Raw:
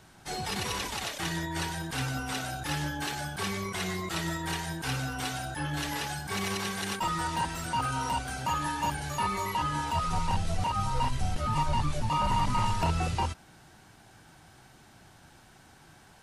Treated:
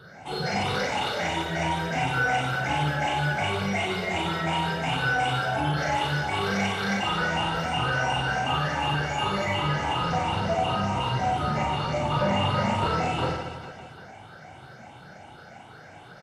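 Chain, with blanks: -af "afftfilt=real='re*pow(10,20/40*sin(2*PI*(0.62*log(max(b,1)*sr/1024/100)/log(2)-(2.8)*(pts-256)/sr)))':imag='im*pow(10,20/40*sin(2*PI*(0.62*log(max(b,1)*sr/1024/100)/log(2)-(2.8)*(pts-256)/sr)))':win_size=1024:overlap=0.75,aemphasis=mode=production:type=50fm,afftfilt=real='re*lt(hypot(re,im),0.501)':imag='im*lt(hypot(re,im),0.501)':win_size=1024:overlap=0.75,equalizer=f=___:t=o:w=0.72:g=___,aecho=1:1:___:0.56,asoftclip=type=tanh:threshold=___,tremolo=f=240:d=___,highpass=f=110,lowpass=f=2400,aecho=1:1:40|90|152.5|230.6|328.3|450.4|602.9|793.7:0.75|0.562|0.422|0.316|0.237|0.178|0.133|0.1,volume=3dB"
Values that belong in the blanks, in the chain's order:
460, 7.5, 1.4, -20.5dB, 0.462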